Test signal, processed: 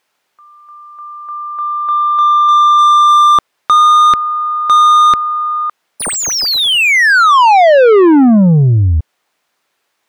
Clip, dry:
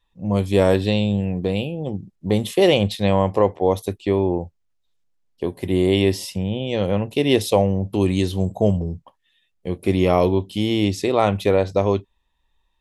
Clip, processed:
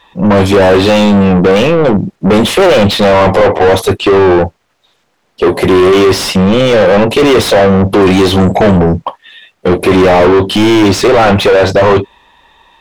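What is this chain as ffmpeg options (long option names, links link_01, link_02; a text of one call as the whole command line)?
ffmpeg -i in.wav -filter_complex "[0:a]asplit=2[link_01][link_02];[link_02]highpass=frequency=720:poles=1,volume=37dB,asoftclip=type=tanh:threshold=-2.5dB[link_03];[link_01][link_03]amix=inputs=2:normalize=0,lowpass=frequency=1400:poles=1,volume=-6dB,acontrast=44" out.wav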